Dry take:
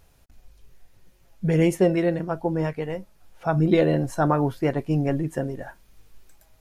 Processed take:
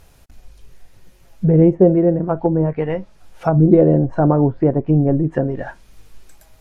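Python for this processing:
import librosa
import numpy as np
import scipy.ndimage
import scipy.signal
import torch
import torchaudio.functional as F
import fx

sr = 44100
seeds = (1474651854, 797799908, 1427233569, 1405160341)

y = fx.env_lowpass_down(x, sr, base_hz=620.0, full_db=-20.5)
y = y * 10.0 ** (8.5 / 20.0)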